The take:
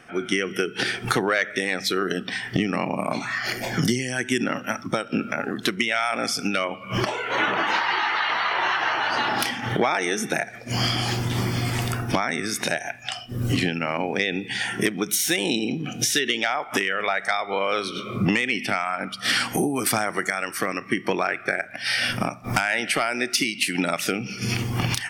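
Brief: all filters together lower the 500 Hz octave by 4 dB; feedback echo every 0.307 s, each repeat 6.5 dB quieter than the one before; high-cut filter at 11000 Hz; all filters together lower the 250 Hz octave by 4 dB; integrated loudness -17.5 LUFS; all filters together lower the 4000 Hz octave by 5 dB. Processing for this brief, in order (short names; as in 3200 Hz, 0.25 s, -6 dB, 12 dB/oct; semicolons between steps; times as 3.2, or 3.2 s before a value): LPF 11000 Hz; bell 250 Hz -4 dB; bell 500 Hz -4 dB; bell 4000 Hz -7 dB; feedback echo 0.307 s, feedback 47%, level -6.5 dB; gain +8 dB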